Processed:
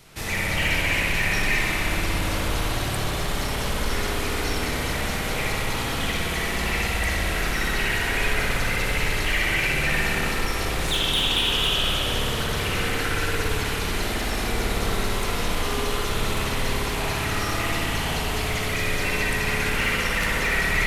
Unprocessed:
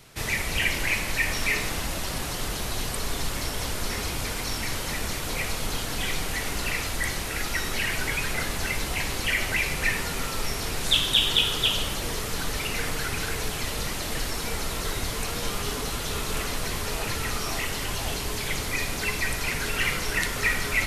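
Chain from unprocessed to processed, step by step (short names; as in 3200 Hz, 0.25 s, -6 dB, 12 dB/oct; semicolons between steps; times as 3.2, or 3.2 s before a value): soft clip -20.5 dBFS, distortion -15 dB; spring tank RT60 3 s, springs 56 ms, chirp 40 ms, DRR -5 dB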